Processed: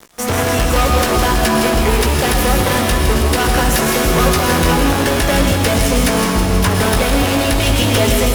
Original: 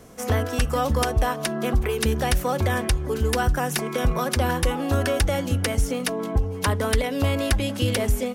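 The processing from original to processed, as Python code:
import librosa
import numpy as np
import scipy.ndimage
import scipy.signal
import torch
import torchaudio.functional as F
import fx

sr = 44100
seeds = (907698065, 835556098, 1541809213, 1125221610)

p1 = fx.rider(x, sr, range_db=10, speed_s=0.5)
p2 = x + (p1 * librosa.db_to_amplitude(1.5))
p3 = p2 * (1.0 - 0.54 / 2.0 + 0.54 / 2.0 * np.cos(2.0 * np.pi * 2.6 * (np.arange(len(p2)) / sr)))
p4 = fx.fuzz(p3, sr, gain_db=27.0, gate_db=-35.0)
p5 = fx.doubler(p4, sr, ms=17.0, db=-6.5)
p6 = p5 + fx.echo_wet_highpass(p5, sr, ms=162, feedback_pct=71, hz=2600.0, wet_db=-7, dry=0)
p7 = fx.rev_plate(p6, sr, seeds[0], rt60_s=1.4, hf_ratio=0.95, predelay_ms=95, drr_db=1.5)
y = p7 * librosa.db_to_amplitude(-1.0)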